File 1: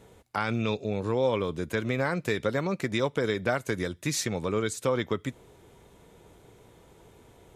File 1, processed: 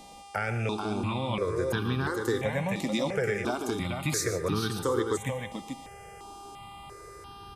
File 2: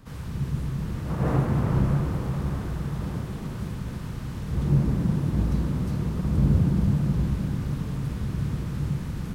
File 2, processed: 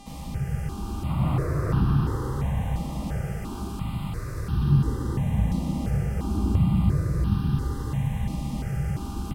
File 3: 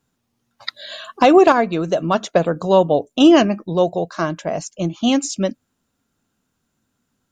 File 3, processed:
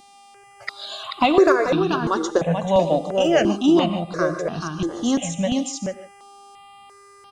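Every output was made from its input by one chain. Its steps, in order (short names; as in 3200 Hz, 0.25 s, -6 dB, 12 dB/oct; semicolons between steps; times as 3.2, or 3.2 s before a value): dynamic EQ 910 Hz, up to -4 dB, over -32 dBFS, Q 1; in parallel at -3 dB: compressor, threshold -31 dBFS; on the sum: buzz 400 Hz, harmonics 26, -44 dBFS -6 dB/oct; echo 0.436 s -5.5 dB; non-linear reverb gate 0.17 s rising, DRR 10.5 dB; step phaser 2.9 Hz 410–2100 Hz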